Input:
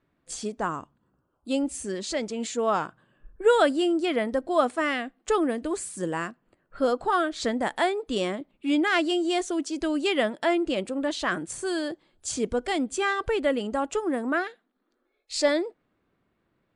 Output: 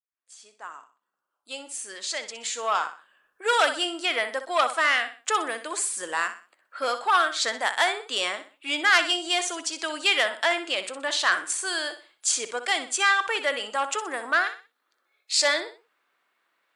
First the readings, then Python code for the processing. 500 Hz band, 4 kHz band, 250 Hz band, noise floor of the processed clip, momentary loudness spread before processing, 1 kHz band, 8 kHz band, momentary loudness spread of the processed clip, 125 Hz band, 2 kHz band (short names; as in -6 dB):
-5.5 dB, +8.0 dB, -14.0 dB, -77 dBFS, 9 LU, +3.0 dB, +8.0 dB, 11 LU, under -20 dB, +7.0 dB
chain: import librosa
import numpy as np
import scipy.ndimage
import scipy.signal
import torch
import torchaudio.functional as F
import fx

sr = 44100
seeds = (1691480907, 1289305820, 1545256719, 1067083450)

y = fx.fade_in_head(x, sr, length_s=3.72)
y = scipy.signal.sosfilt(scipy.signal.butter(2, 1100.0, 'highpass', fs=sr, output='sos'), y)
y = fx.echo_feedback(y, sr, ms=62, feedback_pct=33, wet_db=-11.5)
y = fx.transformer_sat(y, sr, knee_hz=2900.0)
y = y * librosa.db_to_amplitude(8.5)